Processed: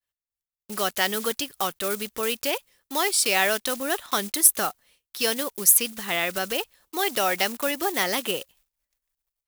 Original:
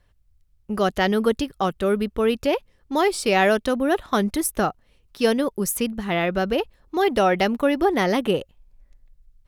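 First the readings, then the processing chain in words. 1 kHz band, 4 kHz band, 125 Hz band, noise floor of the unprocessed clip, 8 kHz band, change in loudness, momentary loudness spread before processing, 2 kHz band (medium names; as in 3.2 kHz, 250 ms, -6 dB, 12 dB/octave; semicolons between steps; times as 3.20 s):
-4.5 dB, +3.5 dB, -13.0 dB, -62 dBFS, +10.0 dB, -1.0 dB, 6 LU, 0.0 dB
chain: block-companded coder 5-bit; in parallel at -2 dB: compression, threshold -26 dBFS, peak gain reduction 11.5 dB; on the sum: tilt EQ +4 dB/octave; expander -46 dBFS; trim -6 dB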